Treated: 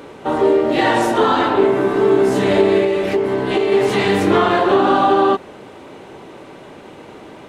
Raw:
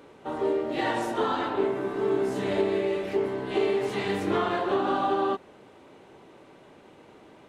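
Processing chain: in parallel at -1 dB: peak limiter -23 dBFS, peak gain reduction 9.5 dB; 2.83–3.72 s: on the sum: compression, threshold -22 dBFS, peak gain reduction 5 dB; trim +8.5 dB

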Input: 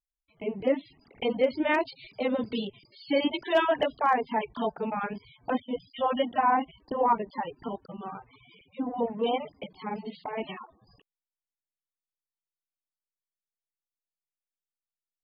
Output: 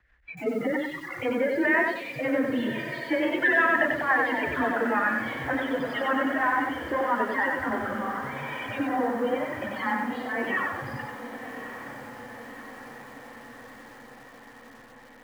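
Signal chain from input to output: jump at every zero crossing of -32.5 dBFS; spectral noise reduction 23 dB; peak limiter -21.5 dBFS, peak gain reduction 8.5 dB; rotary cabinet horn 6 Hz, later 1 Hz, at 6.89 s; frequency shift +19 Hz; resonant low-pass 1.8 kHz, resonance Q 6.8; echo that smears into a reverb 1162 ms, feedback 65%, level -11 dB; bit-crushed delay 93 ms, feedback 35%, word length 9-bit, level -3 dB; trim +2.5 dB

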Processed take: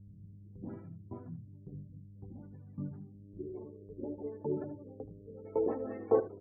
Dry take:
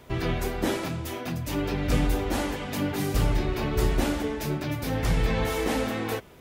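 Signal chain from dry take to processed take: tape start-up on the opening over 0.55 s; RIAA curve playback; spectral gate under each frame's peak -25 dB strong; bass shelf 250 Hz +10 dB; reverse; compression 6:1, threshold -20 dBFS, peak gain reduction 24.5 dB; reverse; LFO high-pass saw up 1.8 Hz 990–3000 Hz; mains buzz 100 Hz, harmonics 6, -70 dBFS -6 dB/octave; low-pass sweep 160 Hz -> 410 Hz, 2.98–3.48 s; on a send: delay 77 ms -15.5 dB; on the sum: trim +14.5 dB

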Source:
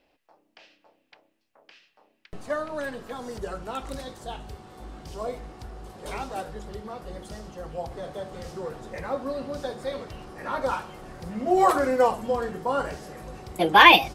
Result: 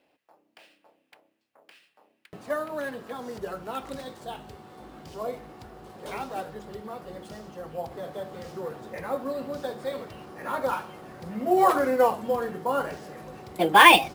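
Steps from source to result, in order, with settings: high-pass 120 Hz 12 dB/octave; in parallel at -4 dB: sample-rate reducer 12 kHz, jitter 0%; on the sum: trim -4.5 dB

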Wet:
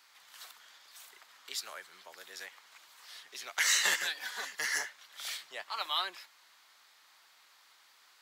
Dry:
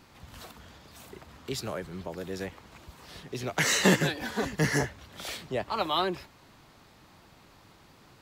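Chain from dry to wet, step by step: high-pass 1.5 kHz 12 dB/octave; peaking EQ 2.6 kHz -4 dB 0.26 oct

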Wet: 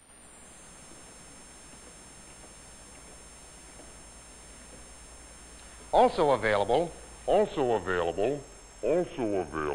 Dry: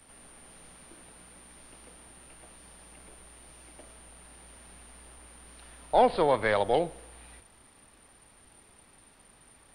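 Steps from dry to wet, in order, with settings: ever faster or slower copies 220 ms, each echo -3 st, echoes 3

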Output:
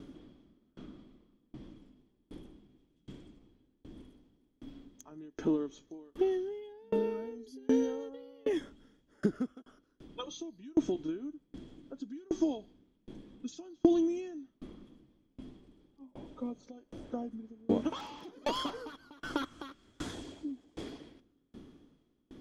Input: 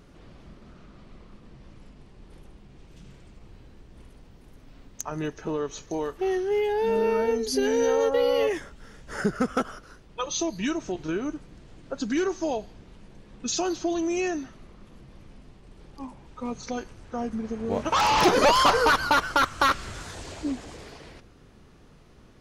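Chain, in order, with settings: 8.62–9.66 s: fade out equal-power; 16.01–17.29 s: peaking EQ 590 Hz +10.5 dB 0.56 oct; compression 6:1, threshold -28 dBFS, peak gain reduction 12.5 dB; small resonant body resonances 280/3300 Hz, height 17 dB, ringing for 30 ms; sawtooth tremolo in dB decaying 1.3 Hz, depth 32 dB; trim -3 dB

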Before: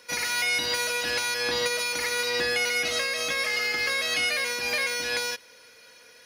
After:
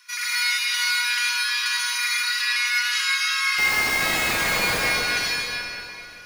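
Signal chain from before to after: Chebyshev high-pass 1 kHz, order 10; 3.58–4.78 s: Schmitt trigger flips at -31.5 dBFS; echo whose repeats swap between lows and highs 147 ms, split 1.7 kHz, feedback 63%, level -10 dB; reverberation RT60 3.1 s, pre-delay 63 ms, DRR -5 dB

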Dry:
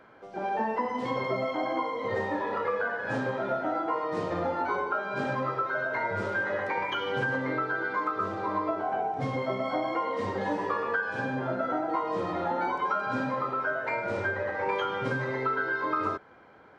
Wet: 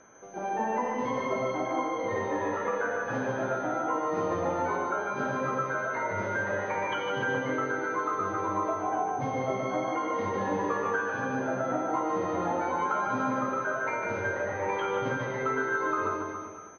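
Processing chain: de-hum 65.75 Hz, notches 2; whistle 6.2 kHz -45 dBFS; distance through air 220 m; bouncing-ball echo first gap 150 ms, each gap 0.9×, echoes 5; trim -1 dB

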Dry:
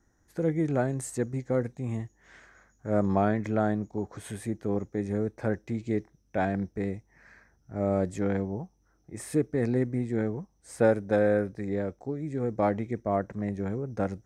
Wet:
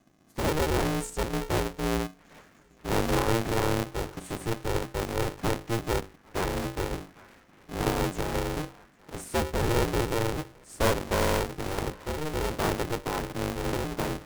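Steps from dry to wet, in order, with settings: cycle switcher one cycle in 2, inverted; tone controls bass +12 dB, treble +4 dB; hum notches 50/100/150/200/250/300/350 Hz; band-passed feedback delay 802 ms, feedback 81%, band-pass 1.6 kHz, level -18 dB; polarity switched at an audio rate 230 Hz; trim -5 dB

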